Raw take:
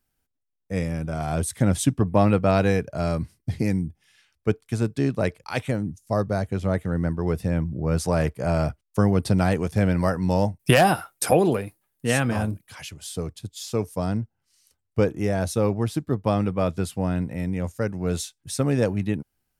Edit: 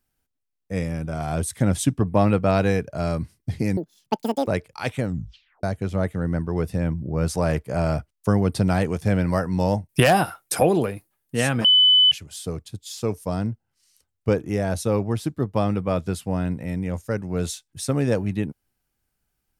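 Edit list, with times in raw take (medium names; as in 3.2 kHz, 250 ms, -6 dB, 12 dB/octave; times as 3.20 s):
3.77–5.18 s: speed 200%
5.75 s: tape stop 0.59 s
12.35–12.82 s: bleep 3 kHz -11.5 dBFS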